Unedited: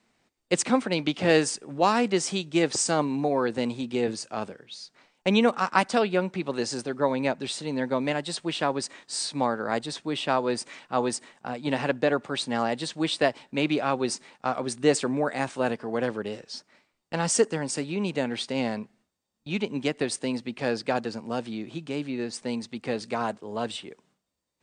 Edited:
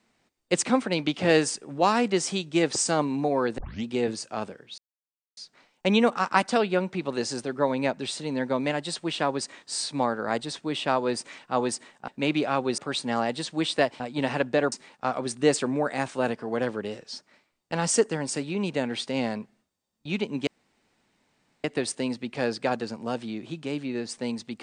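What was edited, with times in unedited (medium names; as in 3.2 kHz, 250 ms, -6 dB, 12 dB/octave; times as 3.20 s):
3.58 s: tape start 0.27 s
4.78 s: insert silence 0.59 s
11.49–12.21 s: swap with 13.43–14.13 s
19.88 s: insert room tone 1.17 s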